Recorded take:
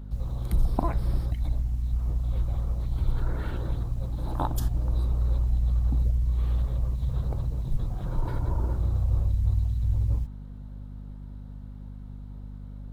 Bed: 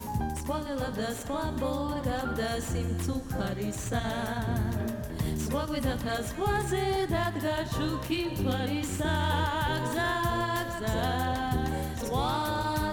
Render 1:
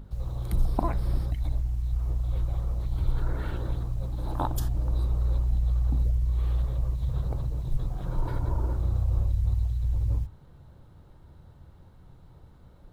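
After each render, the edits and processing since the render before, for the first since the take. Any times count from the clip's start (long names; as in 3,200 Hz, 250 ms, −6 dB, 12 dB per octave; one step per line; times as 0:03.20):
mains-hum notches 50/100/150/200/250 Hz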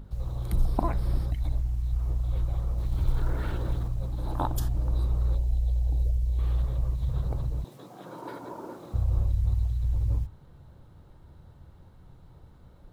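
0:02.78–0:03.88: mu-law and A-law mismatch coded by mu
0:05.35–0:06.39: phaser with its sweep stopped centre 520 Hz, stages 4
0:07.64–0:08.94: high-pass filter 220 Hz 24 dB per octave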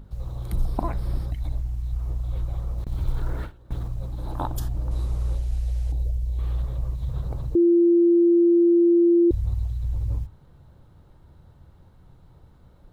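0:02.84–0:03.73: noise gate with hold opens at −19 dBFS, closes at −27 dBFS
0:04.91–0:05.92: linear delta modulator 64 kbit/s, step −46 dBFS
0:07.55–0:09.31: beep over 343 Hz −13.5 dBFS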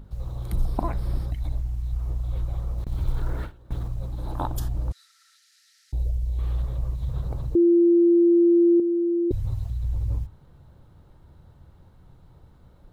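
0:04.92–0:05.93: Chebyshev high-pass with heavy ripple 1,300 Hz, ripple 9 dB
0:08.79–0:09.70: comb filter 7.5 ms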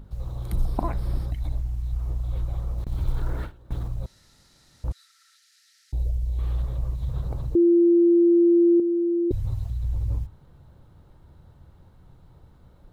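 0:04.06–0:04.84: fill with room tone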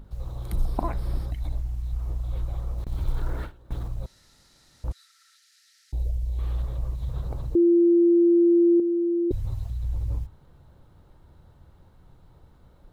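parametric band 120 Hz −3.5 dB 1.9 octaves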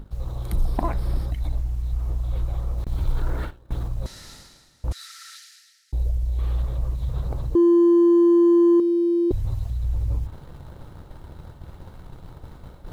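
leveller curve on the samples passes 1
reversed playback
upward compression, threshold −26 dBFS
reversed playback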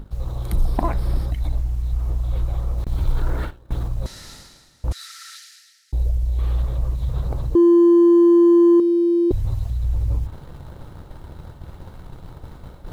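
level +3 dB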